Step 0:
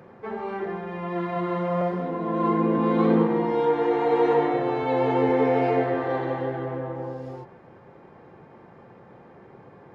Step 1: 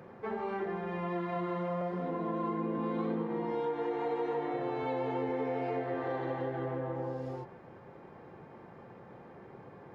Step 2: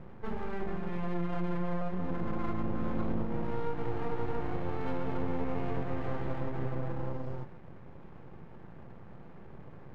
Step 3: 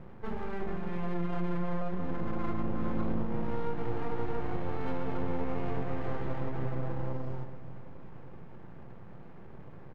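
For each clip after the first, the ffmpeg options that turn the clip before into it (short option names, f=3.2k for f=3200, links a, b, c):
-af "acompressor=threshold=-29dB:ratio=5,volume=-2.5dB"
-af "aeval=exprs='max(val(0),0)':c=same,bass=f=250:g=11,treble=f=4k:g=-6"
-af "aecho=1:1:377|754|1131|1508|1885:0.178|0.096|0.0519|0.028|0.0151"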